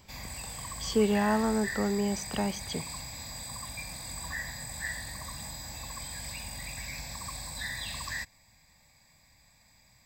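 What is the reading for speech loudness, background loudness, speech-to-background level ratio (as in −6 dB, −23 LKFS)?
−30.0 LKFS, −37.5 LKFS, 7.5 dB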